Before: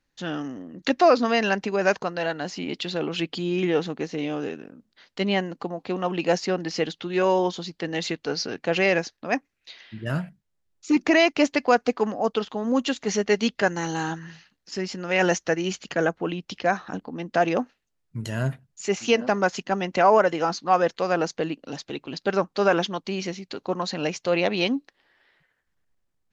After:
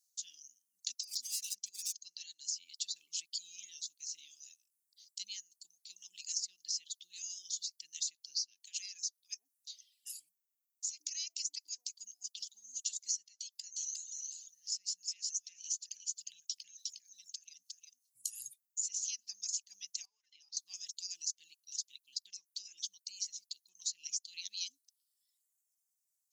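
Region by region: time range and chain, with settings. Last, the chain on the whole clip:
0:01.03–0:02.02: compressor whose output falls as the input rises −18 dBFS, ratio −0.5 + gain into a clipping stage and back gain 20 dB
0:08.65–0:11.91: high-pass filter 290 Hz 24 dB per octave + downward compressor 4 to 1, threshold −21 dBFS + multiband delay without the direct sound highs, lows 100 ms, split 900 Hz
0:13.28–0:18.33: downward compressor 10 to 1, threshold −29 dBFS + linear-phase brick-wall band-stop 270–1,400 Hz + single-tap delay 358 ms −3 dB
0:20.05–0:20.57: high-pass filter 460 Hz + high-frequency loss of the air 290 metres + downward compressor 12 to 1, threshold −26 dBFS
0:21.89–0:23.75: parametric band 6,400 Hz −3 dB 0.92 octaves + downward compressor 2.5 to 1, threshold −25 dBFS
whole clip: inverse Chebyshev high-pass filter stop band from 1,500 Hz, stop band 70 dB; reverb reduction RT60 1.1 s; downward compressor 6 to 1, threshold −47 dBFS; level +13 dB

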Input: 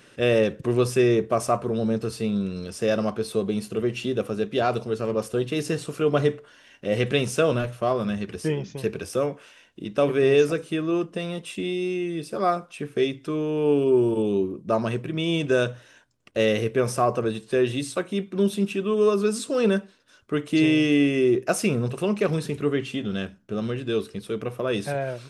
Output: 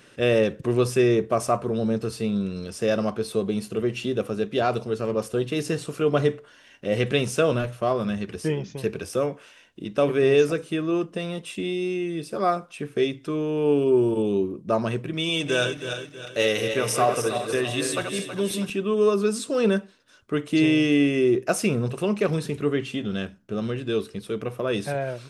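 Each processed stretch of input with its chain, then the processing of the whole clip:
0:15.13–0:18.70: feedback delay that plays each chunk backwards 161 ms, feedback 63%, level −6 dB + spectral tilt +2 dB per octave + comb filter 6.8 ms, depth 34%
whole clip: no processing

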